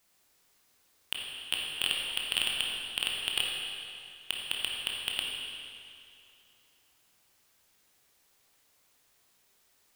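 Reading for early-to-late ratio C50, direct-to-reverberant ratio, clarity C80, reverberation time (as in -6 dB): -0.5 dB, -2.0 dB, 1.0 dB, 2.5 s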